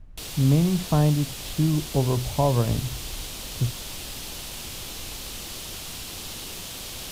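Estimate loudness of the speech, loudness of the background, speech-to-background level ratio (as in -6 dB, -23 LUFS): -24.5 LUFS, -34.0 LUFS, 9.5 dB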